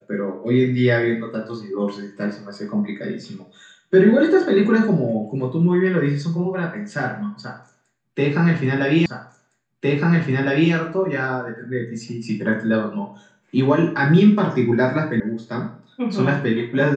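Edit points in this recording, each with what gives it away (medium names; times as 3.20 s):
9.06 s: repeat of the last 1.66 s
15.20 s: sound stops dead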